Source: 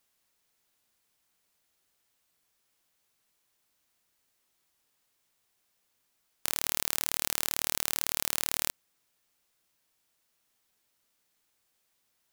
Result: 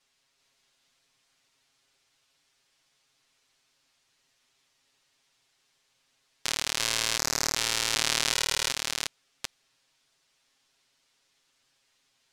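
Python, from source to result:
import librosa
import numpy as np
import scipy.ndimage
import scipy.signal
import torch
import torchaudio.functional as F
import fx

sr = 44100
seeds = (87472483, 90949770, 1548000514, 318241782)

y = fx.reverse_delay(x, sr, ms=378, wet_db=-2)
y = scipy.signal.sosfilt(scipy.signal.butter(2, 5100.0, 'lowpass', fs=sr, output='sos'), y)
y = fx.high_shelf(y, sr, hz=2500.0, db=8.5)
y = y + 0.95 * np.pad(y, (int(7.4 * sr / 1000.0), 0))[:len(y)]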